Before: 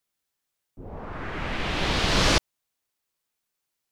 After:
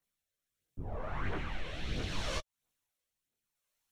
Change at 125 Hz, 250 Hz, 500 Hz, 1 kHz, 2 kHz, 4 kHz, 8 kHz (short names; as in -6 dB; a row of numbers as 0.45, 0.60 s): -9.5, -13.5, -12.5, -13.5, -14.5, -17.0, -17.0 dB